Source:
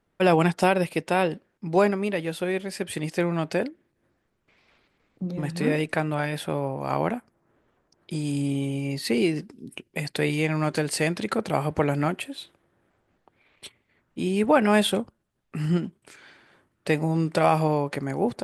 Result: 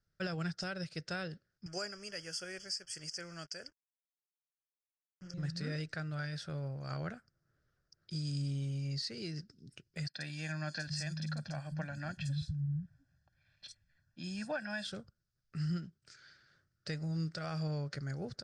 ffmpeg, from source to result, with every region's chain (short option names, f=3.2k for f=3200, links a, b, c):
-filter_complex "[0:a]asettb=1/sr,asplit=3[a][b][c];[a]atrim=end=1.664[d];[b]atrim=start=1.66:end=5.34,asetpts=PTS-STARTPTS,afade=t=in:d=0.004:c=qsin,afade=t=out:st=3.676:d=0.004:c=qsin,bass=f=250:g=-13,treble=f=4k:g=14,acrusher=bits=6:mix=0:aa=0.5,asuperstop=centerf=3900:order=12:qfactor=3.3[e];[c]atrim=start=5.336[f];[d][e]acrossfade=d=0.004:c1=hsin:c2=qsin[g];[g][f]acrossfade=d=0.004:c1=qsin:c2=hsin,asettb=1/sr,asplit=3[h][i][j];[h]atrim=end=10.094[k];[i]atrim=start=10.09:end=14.85,asetpts=PTS-STARTPTS,afade=t=in:d=0.004:c=qsin,afade=t=out:st=4.756:d=0.004:c=qsin,aecho=1:1:1.2:0.92,atrim=end_sample=209916,acrossover=split=180|4800[l][m][n];[n]adelay=50[o];[l]adelay=710[p];[p][m][o]amix=inputs=3:normalize=0,atrim=end_sample=209916[q];[j]atrim=start=14.846[r];[k][q]acrossfade=d=0.004:c1=hsin:c2=qsin[s];[s][r]acrossfade=d=0.004:c1=qsin:c2=hsin,firequalizer=gain_entry='entry(140,0);entry(240,-15);entry(400,-14);entry(600,-12);entry(930,-23);entry(1400,-1);entry(2300,-13);entry(3300,-8);entry(5000,8);entry(12000,-30)':delay=0.05:min_phase=1,alimiter=limit=-23.5dB:level=0:latency=1:release=455,volume=-5dB"